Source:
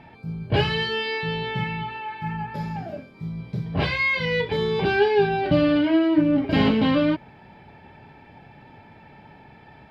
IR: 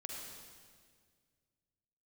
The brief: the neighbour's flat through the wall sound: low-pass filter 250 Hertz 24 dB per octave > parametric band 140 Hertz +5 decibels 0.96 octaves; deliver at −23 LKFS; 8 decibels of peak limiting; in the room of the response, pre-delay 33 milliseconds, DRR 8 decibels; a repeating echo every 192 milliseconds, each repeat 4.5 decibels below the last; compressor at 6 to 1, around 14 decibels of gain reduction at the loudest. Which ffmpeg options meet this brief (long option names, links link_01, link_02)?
-filter_complex "[0:a]acompressor=threshold=-30dB:ratio=6,alimiter=level_in=4dB:limit=-24dB:level=0:latency=1,volume=-4dB,aecho=1:1:192|384|576|768|960|1152|1344|1536|1728:0.596|0.357|0.214|0.129|0.0772|0.0463|0.0278|0.0167|0.01,asplit=2[link_01][link_02];[1:a]atrim=start_sample=2205,adelay=33[link_03];[link_02][link_03]afir=irnorm=-1:irlink=0,volume=-6dB[link_04];[link_01][link_04]amix=inputs=2:normalize=0,lowpass=frequency=250:width=0.5412,lowpass=frequency=250:width=1.3066,equalizer=frequency=140:width_type=o:width=0.96:gain=5,volume=14.5dB"